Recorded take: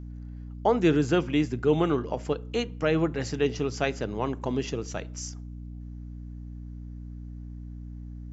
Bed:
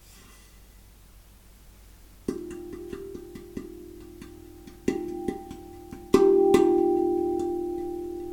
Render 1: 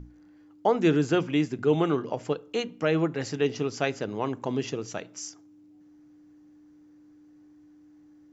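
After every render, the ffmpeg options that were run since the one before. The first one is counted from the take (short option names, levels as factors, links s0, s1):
-af "bandreject=f=60:t=h:w=6,bandreject=f=120:t=h:w=6,bandreject=f=180:t=h:w=6,bandreject=f=240:t=h:w=6"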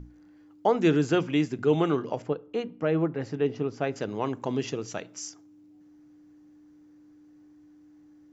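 -filter_complex "[0:a]asettb=1/sr,asplit=3[s0][s1][s2];[s0]atrim=end=2.224[s3];[s1]atrim=start=2.22:end=3.96,asetpts=PTS-STARTPTS,afade=t=in:d=0.004:c=qsin,afade=t=out:st=1.736:d=0.004:c=qsin,lowpass=f=1100:p=1[s4];[s2]atrim=start=3.956[s5];[s3][s4]acrossfade=d=0.004:c1=hsin:c2=qsin[s6];[s6][s5]acrossfade=d=0.004:c1=qsin:c2=hsin"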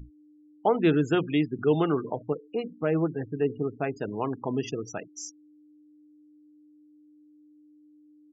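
-af "bandreject=f=550:w=12,afftfilt=real='re*gte(hypot(re,im),0.0178)':imag='im*gte(hypot(re,im),0.0178)':win_size=1024:overlap=0.75"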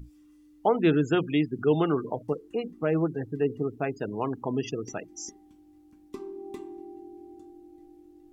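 -filter_complex "[1:a]volume=0.0891[s0];[0:a][s0]amix=inputs=2:normalize=0"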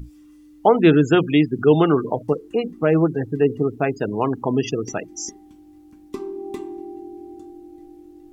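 -af "volume=2.66"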